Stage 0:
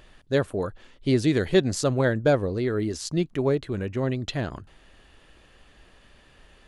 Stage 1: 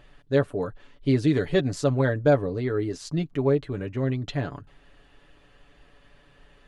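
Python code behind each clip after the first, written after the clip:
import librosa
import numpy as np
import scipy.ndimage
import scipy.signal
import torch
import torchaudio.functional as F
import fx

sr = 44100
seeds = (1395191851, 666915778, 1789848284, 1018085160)

y = fx.high_shelf(x, sr, hz=4200.0, db=-9.0)
y = y + 0.61 * np.pad(y, (int(7.0 * sr / 1000.0), 0))[:len(y)]
y = F.gain(torch.from_numpy(y), -2.0).numpy()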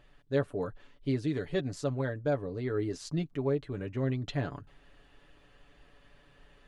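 y = fx.rider(x, sr, range_db=4, speed_s=0.5)
y = F.gain(torch.from_numpy(y), -7.5).numpy()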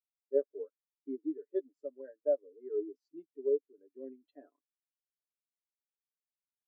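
y = scipy.signal.sosfilt(scipy.signal.butter(4, 280.0, 'highpass', fs=sr, output='sos'), x)
y = fx.spectral_expand(y, sr, expansion=2.5)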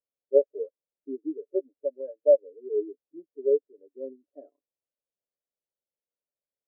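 y = fx.lowpass_res(x, sr, hz=550.0, q=4.4)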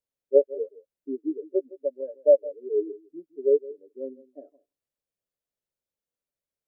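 y = fx.low_shelf(x, sr, hz=240.0, db=9.0)
y = y + 10.0 ** (-19.0 / 20.0) * np.pad(y, (int(163 * sr / 1000.0), 0))[:len(y)]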